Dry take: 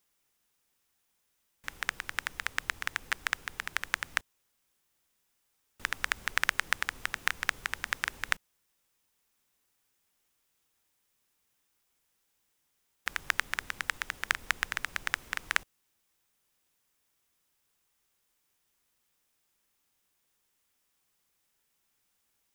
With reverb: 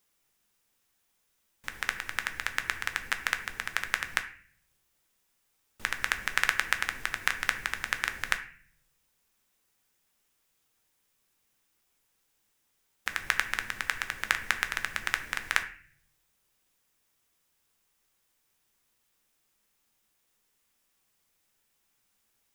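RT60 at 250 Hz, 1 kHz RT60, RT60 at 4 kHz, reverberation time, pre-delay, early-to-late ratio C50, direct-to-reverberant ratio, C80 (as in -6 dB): 0.85 s, 0.40 s, 0.40 s, 0.45 s, 5 ms, 12.5 dB, 7.0 dB, 16.0 dB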